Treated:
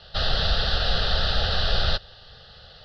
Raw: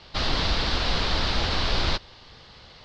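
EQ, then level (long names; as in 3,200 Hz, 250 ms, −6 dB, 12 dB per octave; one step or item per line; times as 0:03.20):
phaser with its sweep stopped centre 1,500 Hz, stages 8
+3.0 dB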